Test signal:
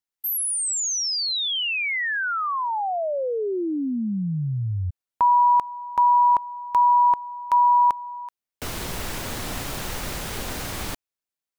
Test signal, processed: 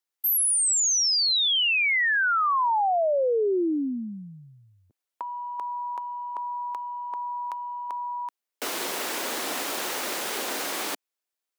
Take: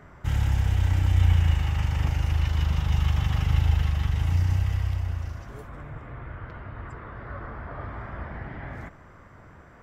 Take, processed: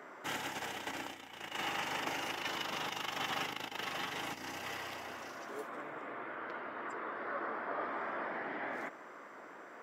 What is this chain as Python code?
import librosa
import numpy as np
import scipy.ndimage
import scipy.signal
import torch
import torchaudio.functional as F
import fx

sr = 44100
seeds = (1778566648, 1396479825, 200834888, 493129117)

y = fx.over_compress(x, sr, threshold_db=-23.0, ratio=-0.5)
y = scipy.signal.sosfilt(scipy.signal.butter(4, 290.0, 'highpass', fs=sr, output='sos'), y)